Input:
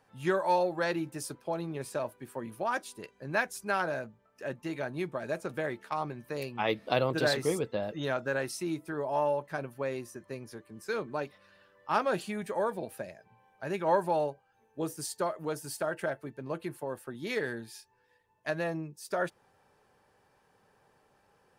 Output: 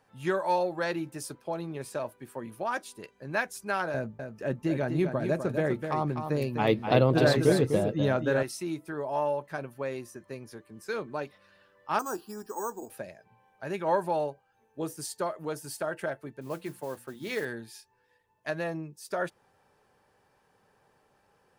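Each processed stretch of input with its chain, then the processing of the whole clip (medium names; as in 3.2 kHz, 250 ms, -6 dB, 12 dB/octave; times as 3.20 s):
3.94–8.43 s: bass shelf 460 Hz +11.5 dB + delay 251 ms -7 dB
11.99–12.90 s: low-pass 2.6 kHz + careless resampling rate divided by 6×, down filtered, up hold + static phaser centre 580 Hz, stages 6
16.41–17.45 s: hum notches 60/120/180/240 Hz + modulation noise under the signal 20 dB
whole clip: none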